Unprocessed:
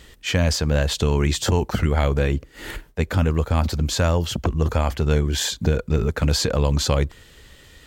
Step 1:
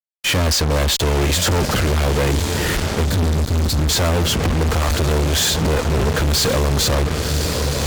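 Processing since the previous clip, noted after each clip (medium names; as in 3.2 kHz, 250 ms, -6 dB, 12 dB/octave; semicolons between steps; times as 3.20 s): echo that smears into a reverb 1085 ms, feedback 53%, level -12 dB; time-frequency box 3.05–3.89 s, 280–3400 Hz -12 dB; fuzz box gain 36 dB, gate -35 dBFS; trim -2 dB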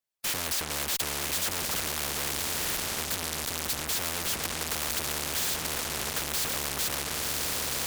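spectrum-flattening compressor 4:1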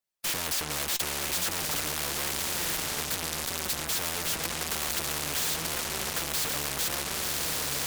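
flange 0.84 Hz, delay 5.1 ms, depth 1.8 ms, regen +65%; trim +4.5 dB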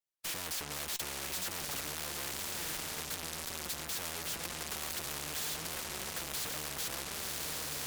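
wow and flutter 74 cents; trim -8 dB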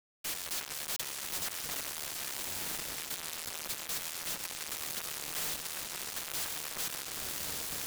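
word length cut 6-bit, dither none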